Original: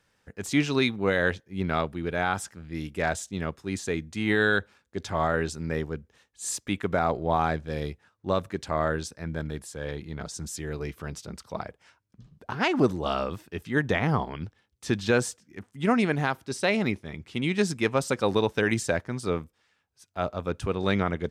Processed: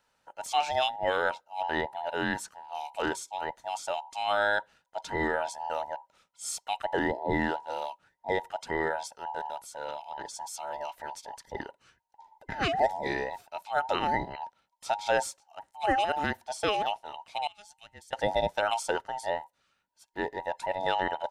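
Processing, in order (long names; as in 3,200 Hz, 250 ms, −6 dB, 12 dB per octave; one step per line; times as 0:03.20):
frequency inversion band by band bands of 1,000 Hz
0:17.47–0:18.13: guitar amp tone stack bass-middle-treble 6-0-2
level −3.5 dB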